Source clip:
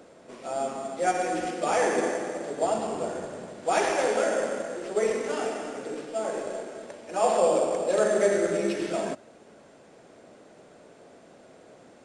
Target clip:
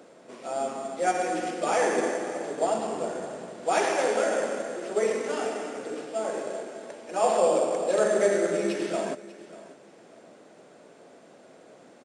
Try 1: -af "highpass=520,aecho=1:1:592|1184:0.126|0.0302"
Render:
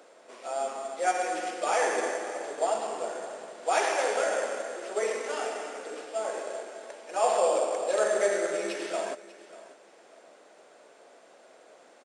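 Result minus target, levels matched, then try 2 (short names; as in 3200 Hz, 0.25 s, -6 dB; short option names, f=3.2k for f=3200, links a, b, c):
125 Hz band -14.0 dB
-af "highpass=150,aecho=1:1:592|1184:0.126|0.0302"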